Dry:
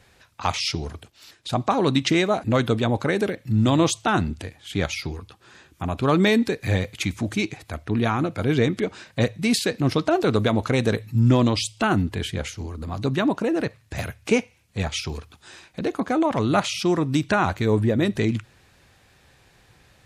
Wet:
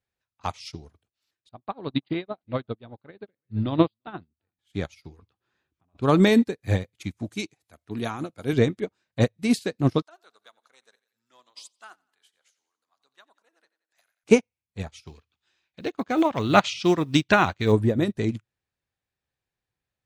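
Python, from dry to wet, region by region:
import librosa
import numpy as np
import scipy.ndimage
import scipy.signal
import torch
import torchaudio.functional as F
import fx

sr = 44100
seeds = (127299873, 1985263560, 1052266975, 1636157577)

y = fx.chain(x, sr, fx.brickwall_lowpass(high_hz=4900.0),
    fx.echo_single(ms=343, db=-23.0),
    fx.upward_expand(threshold_db=-27.0, expansion=2.5), at=(1.49, 4.59))
y = fx.chain(y, sr, fx.air_absorb(metres=96.0),
    fx.over_compress(threshold_db=-36.0, ratio=-1.0), at=(5.19, 6.02))
y = fx.chain(y, sr, fx.highpass(hz=150.0, slope=6),
    fx.high_shelf(hz=3800.0, db=9.5), at=(7.29, 8.53))
y = fx.chain(y, sr, fx.highpass(hz=1300.0, slope=12),
    fx.peak_eq(hz=2400.0, db=-6.0, octaves=0.69),
    fx.echo_feedback(ms=88, feedback_pct=50, wet_db=-12.5), at=(10.02, 14.24))
y = fx.chain(y, sr, fx.lowpass(hz=7600.0, slope=24),
    fx.quant_companded(bits=8),
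    fx.peak_eq(hz=2900.0, db=9.5, octaves=1.8), at=(15.07, 17.72))
y = fx.dynamic_eq(y, sr, hz=2400.0, q=0.7, threshold_db=-39.0, ratio=4.0, max_db=-4)
y = fx.upward_expand(y, sr, threshold_db=-40.0, expansion=2.5)
y = y * librosa.db_to_amplitude(5.5)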